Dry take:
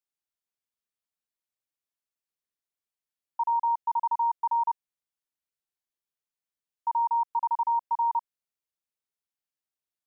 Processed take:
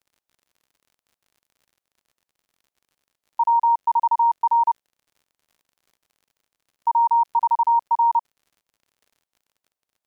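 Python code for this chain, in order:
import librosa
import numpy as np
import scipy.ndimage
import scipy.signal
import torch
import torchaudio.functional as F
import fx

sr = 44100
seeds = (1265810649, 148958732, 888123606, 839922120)

y = fx.peak_eq(x, sr, hz=700.0, db=7.5, octaves=1.5)
y = fx.dmg_crackle(y, sr, seeds[0], per_s=68.0, level_db=-51.0)
y = y * librosa.db_to_amplitude(2.0)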